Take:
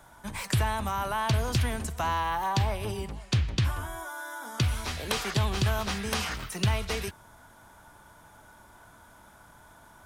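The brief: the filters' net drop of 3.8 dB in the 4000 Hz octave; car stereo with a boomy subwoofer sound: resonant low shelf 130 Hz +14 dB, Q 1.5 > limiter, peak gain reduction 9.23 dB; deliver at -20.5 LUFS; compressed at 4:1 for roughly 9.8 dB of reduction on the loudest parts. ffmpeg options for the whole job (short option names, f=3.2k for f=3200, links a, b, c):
-af "equalizer=f=4k:t=o:g=-5,acompressor=threshold=-33dB:ratio=4,lowshelf=f=130:t=q:w=1.5:g=14,volume=11dB,alimiter=limit=-11dB:level=0:latency=1"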